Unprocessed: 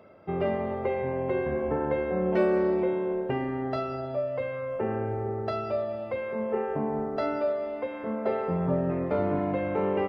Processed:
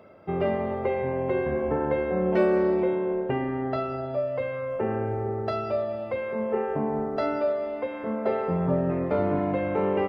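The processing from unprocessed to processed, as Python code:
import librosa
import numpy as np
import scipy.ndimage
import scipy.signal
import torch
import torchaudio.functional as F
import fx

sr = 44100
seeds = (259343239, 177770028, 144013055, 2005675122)

y = fx.lowpass(x, sr, hz=3700.0, slope=12, at=(2.95, 4.14))
y = y * 10.0 ** (2.0 / 20.0)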